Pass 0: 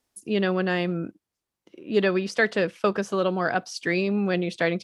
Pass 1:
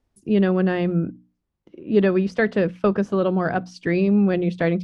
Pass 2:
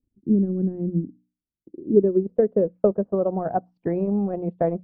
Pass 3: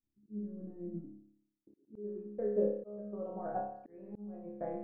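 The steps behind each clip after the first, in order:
RIAA curve playback; hum notches 60/120/180/240/300 Hz
transient shaper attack +5 dB, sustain -11 dB; low-pass sweep 280 Hz -> 750 Hz, 1.41–3.38 s; trim -7 dB
hum notches 50/100/150/200 Hz; chord resonator C#2 fifth, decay 0.71 s; slow attack 731 ms; trim +4 dB

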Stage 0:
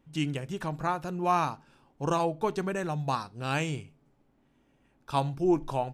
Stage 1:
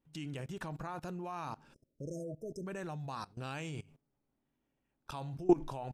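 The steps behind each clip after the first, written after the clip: spectral selection erased 1.74–2.66 s, 660–5000 Hz; level held to a coarse grid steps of 21 dB; trim +1 dB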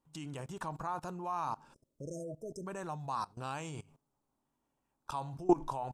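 graphic EQ 1/2/8 kHz +11/-4/+7 dB; trim -2 dB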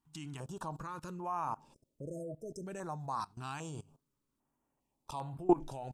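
step-sequenced notch 2.5 Hz 530–5800 Hz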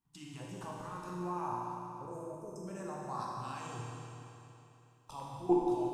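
reverberation RT60 3.1 s, pre-delay 8 ms, DRR -5 dB; trim -6 dB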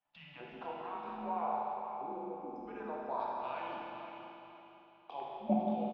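feedback delay 502 ms, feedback 30%, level -10 dB; mistuned SSB -140 Hz 420–3500 Hz; trim +3 dB

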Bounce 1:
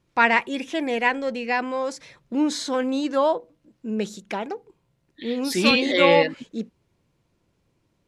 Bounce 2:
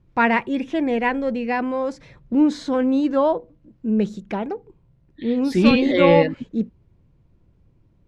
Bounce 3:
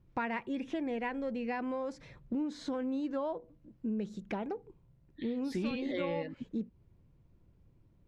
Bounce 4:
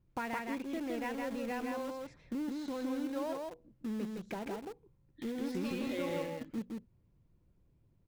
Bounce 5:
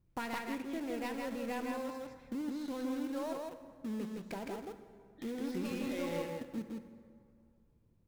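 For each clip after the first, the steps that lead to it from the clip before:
RIAA curve playback
compression 6:1, threshold -26 dBFS, peak gain reduction 16 dB; trim -6.5 dB
in parallel at -8 dB: bit crusher 6-bit; on the sum: delay 163 ms -3 dB; trim -6.5 dB
tracing distortion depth 0.11 ms; plate-style reverb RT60 2.2 s, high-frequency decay 0.6×, DRR 9.5 dB; trim -1.5 dB

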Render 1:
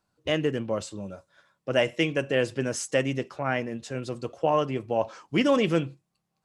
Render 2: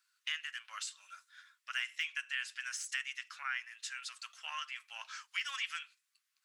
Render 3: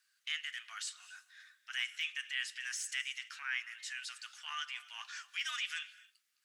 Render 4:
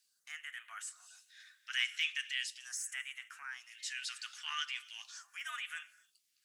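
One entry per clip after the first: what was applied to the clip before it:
de-esser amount 75%; steep high-pass 1.4 kHz 36 dB/octave; compression 2:1, threshold -46 dBFS, peak gain reduction 11 dB; trim +4.5 dB
frequency shift +130 Hz; transient shaper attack -6 dB, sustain +1 dB; on a send at -18 dB: reverberation, pre-delay 3 ms; on the sum: trim +2 dB
phase shifter stages 2, 0.4 Hz, lowest notch 320–4700 Hz; trim +2.5 dB

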